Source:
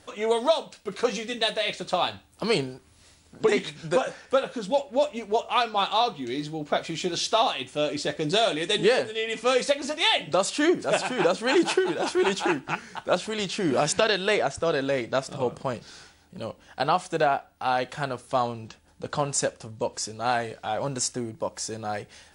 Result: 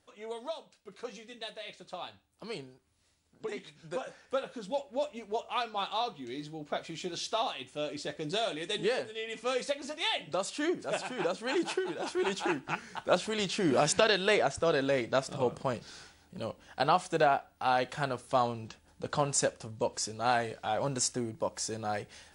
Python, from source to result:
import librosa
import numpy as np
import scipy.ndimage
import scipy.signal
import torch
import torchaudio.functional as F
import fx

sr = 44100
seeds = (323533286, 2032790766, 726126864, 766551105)

y = fx.gain(x, sr, db=fx.line((3.61, -16.5), (4.38, -9.5), (11.95, -9.5), (13.12, -3.0)))